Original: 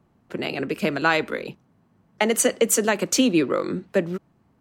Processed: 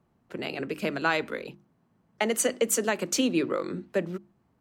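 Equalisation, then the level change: notches 50/100/150/200/250/300/350 Hz; -5.5 dB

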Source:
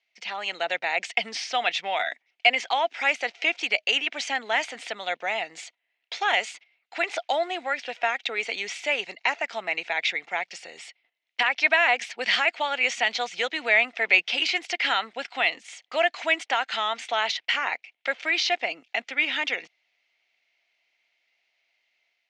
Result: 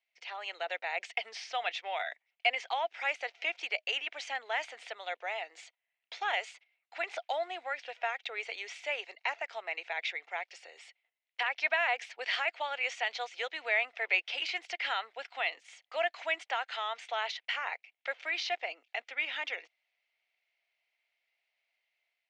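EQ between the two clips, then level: HPF 430 Hz 24 dB/oct; high shelf 4800 Hz -7.5 dB; -8.0 dB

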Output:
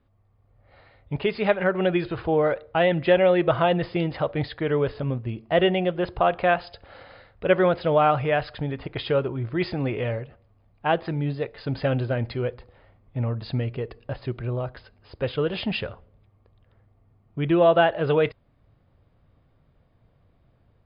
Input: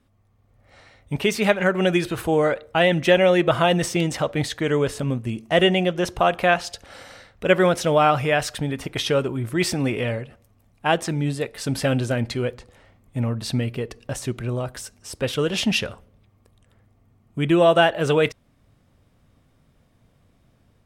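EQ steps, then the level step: brick-wall FIR low-pass 5100 Hz; bell 230 Hz -6.5 dB 0.86 oct; high shelf 2000 Hz -10.5 dB; 0.0 dB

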